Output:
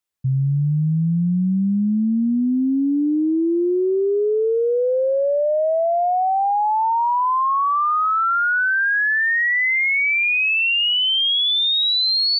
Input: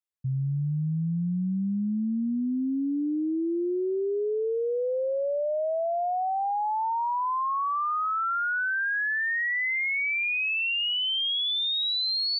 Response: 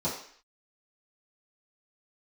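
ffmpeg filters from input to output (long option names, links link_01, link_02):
-af "acontrast=73,volume=2dB"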